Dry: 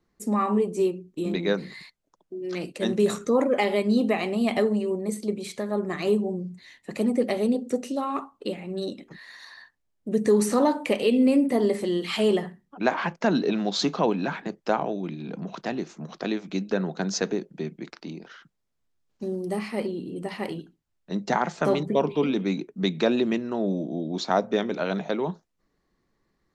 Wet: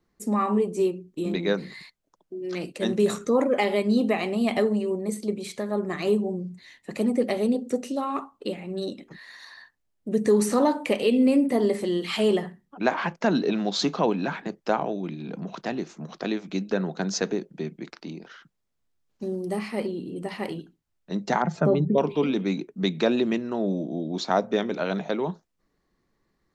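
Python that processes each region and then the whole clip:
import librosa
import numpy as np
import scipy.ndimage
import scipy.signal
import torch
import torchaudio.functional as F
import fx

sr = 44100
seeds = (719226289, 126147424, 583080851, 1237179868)

y = fx.chain(x, sr, fx.spec_expand(power=1.5),
    fx.peak_eq(hz=110.0, db=13.0, octaves=1.3), at=(21.42, 21.98))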